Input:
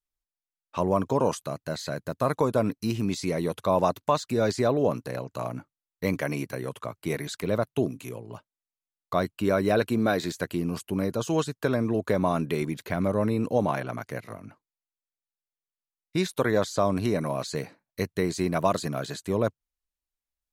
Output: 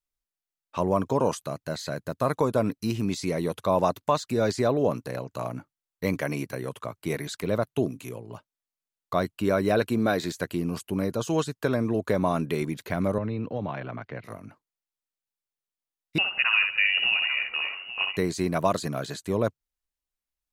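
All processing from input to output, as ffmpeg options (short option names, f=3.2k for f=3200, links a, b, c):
-filter_complex "[0:a]asettb=1/sr,asplit=3[a][b][c];[a]atrim=end=13.184[d];[b]atrim=start=13.18:end=14.24,asetpts=PTS-STARTPTS,afade=t=in:d=0.004:c=qsin,afade=t=out:st=1.056:d=0.004:c=qsin,lowpass=f=3.5k:w=0.5412,lowpass=f=3.5k:w=1.3066,acrossover=split=130|3000[e][f][g];[f]acompressor=threshold=-34dB:ratio=2:attack=3.2:release=140:knee=2.83:detection=peak[h];[e][h][g]amix=inputs=3:normalize=0[i];[c]atrim=start=14.236[j];[d][i]acrossfade=d=0.004:c1=hsin:c2=qsin[k];[k][j]acrossfade=d=0.004:c1=qsin:c2=hsin,asettb=1/sr,asplit=3[l][m][n];[l]atrim=end=16.184[o];[m]atrim=start=16.18:end=18.17,asetpts=PTS-STARTPTS,afade=t=in:d=0.004:c=qsin,afade=t=out:st=1.986:d=0.004:c=qsin,acompressor=mode=upward:threshold=-25dB:ratio=2.5:attack=3.2:release=140:knee=2.83:detection=peak,aecho=1:1:63|144|162|839:0.562|0.126|0.158|0.224,atrim=end_sample=87759,lowpass=f=2.6k:t=q:w=0.5098,lowpass=f=2.6k:t=q:w=0.6013,lowpass=f=2.6k:t=q:w=0.9,lowpass=f=2.6k:t=q:w=2.563,afreqshift=-3000[p];[n]atrim=start=18.166[q];[o][p]acrossfade=d=0.004:c1=hsin:c2=qsin[r];[r][q]acrossfade=d=0.004:c1=qsin:c2=hsin"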